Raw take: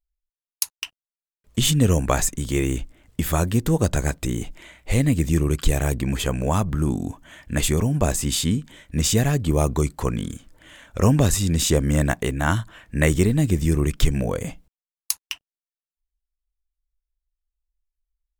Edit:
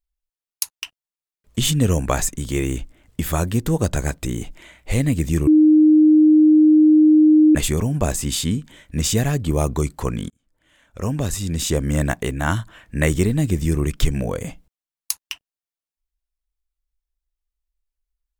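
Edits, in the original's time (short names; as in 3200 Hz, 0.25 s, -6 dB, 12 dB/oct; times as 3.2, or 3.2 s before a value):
5.47–7.55 bleep 308 Hz -8.5 dBFS
10.3–12.04 fade in linear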